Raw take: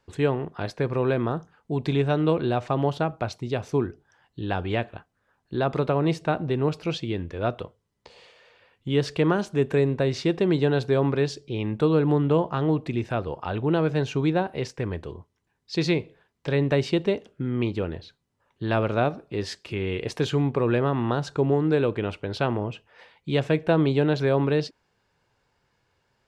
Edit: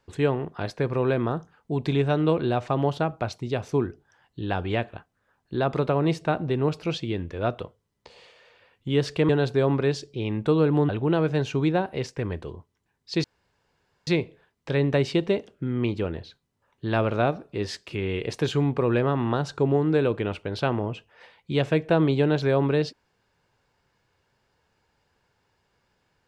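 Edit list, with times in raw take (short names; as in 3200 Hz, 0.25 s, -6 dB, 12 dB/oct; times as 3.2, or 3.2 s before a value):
9.29–10.63 cut
12.23–13.5 cut
15.85 insert room tone 0.83 s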